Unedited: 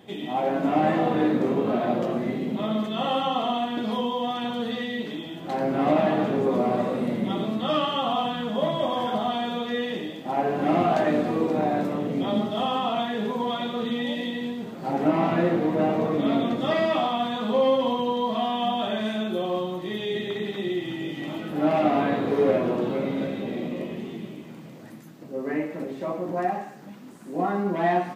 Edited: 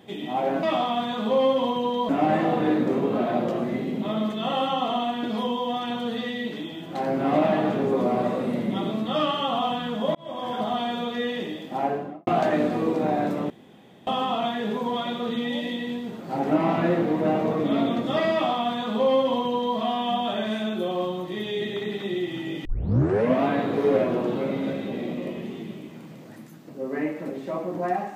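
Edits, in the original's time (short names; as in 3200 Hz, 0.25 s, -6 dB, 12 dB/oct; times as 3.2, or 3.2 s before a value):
8.69–9.39 fade in equal-power
10.33–10.81 studio fade out
12.04–12.61 room tone
16.86–18.32 copy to 0.63
21.19 tape start 0.79 s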